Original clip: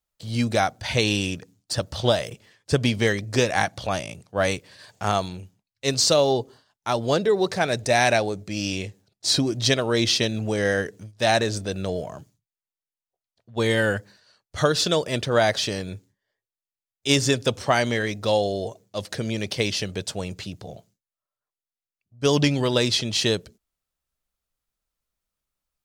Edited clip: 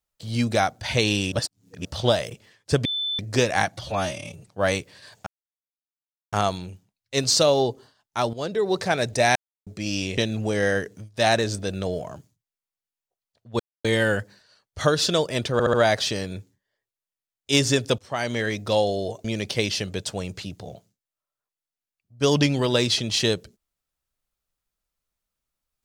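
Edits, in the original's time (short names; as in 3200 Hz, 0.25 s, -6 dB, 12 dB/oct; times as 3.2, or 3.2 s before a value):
1.32–1.85 reverse
2.85–3.19 bleep 3520 Hz -24 dBFS
3.77–4.24 stretch 1.5×
5.03 insert silence 1.06 s
7.04–7.5 fade in, from -13 dB
8.06–8.37 mute
8.88–10.2 cut
13.62 insert silence 0.25 s
15.3 stutter 0.07 s, 4 plays
17.55–18.05 fade in, from -21 dB
18.81–19.26 cut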